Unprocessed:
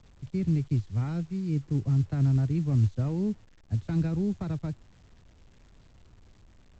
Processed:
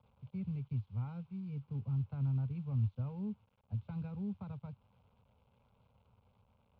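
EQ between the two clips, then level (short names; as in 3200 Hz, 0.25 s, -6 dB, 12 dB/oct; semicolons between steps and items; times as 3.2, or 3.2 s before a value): dynamic EQ 560 Hz, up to -7 dB, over -48 dBFS, Q 1.1; speaker cabinet 150–2500 Hz, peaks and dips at 160 Hz -8 dB, 360 Hz -6 dB, 680 Hz -10 dB, 1200 Hz -5 dB, 1700 Hz -4 dB; fixed phaser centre 760 Hz, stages 4; 0.0 dB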